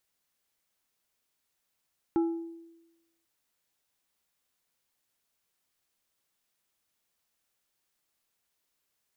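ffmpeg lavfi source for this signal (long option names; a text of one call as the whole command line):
ffmpeg -f lavfi -i "aevalsrc='0.0891*pow(10,-3*t/1.03)*sin(2*PI*333*t)+0.0237*pow(10,-3*t/0.542)*sin(2*PI*832.5*t)+0.00631*pow(10,-3*t/0.39)*sin(2*PI*1332*t)':duration=1.09:sample_rate=44100" out.wav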